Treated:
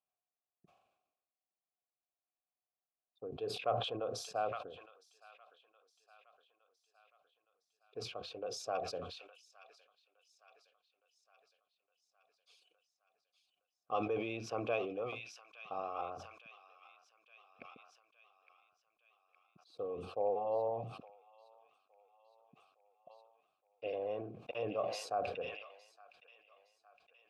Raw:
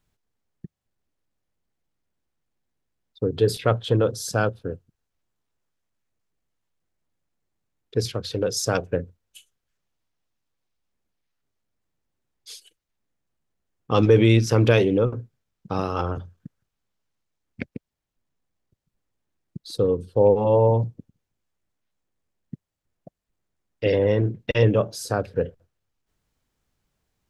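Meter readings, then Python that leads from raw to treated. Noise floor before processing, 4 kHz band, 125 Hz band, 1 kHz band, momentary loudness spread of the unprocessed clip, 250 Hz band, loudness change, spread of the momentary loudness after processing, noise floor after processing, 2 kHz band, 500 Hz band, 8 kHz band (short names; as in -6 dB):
-83 dBFS, -13.0 dB, -29.0 dB, -9.5 dB, 16 LU, -22.5 dB, -17.5 dB, 19 LU, under -85 dBFS, -15.5 dB, -16.5 dB, -17.5 dB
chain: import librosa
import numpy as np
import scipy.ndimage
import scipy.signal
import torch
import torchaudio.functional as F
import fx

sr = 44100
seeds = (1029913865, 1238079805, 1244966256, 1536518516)

y = fx.vowel_filter(x, sr, vowel='a')
y = fx.echo_wet_highpass(y, sr, ms=864, feedback_pct=57, hz=1900.0, wet_db=-9.0)
y = fx.sustainer(y, sr, db_per_s=58.0)
y = y * 10.0 ** (-4.5 / 20.0)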